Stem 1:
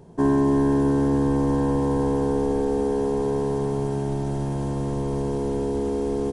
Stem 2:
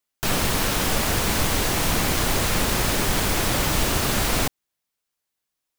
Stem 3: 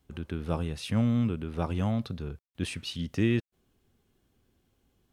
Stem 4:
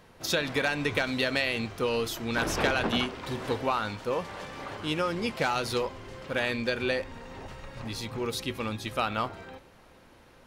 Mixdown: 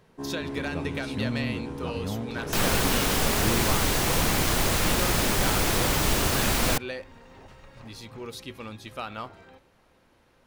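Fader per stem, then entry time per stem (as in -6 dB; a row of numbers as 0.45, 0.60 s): -15.5, -2.0, -5.0, -6.5 dB; 0.00, 2.30, 0.25, 0.00 s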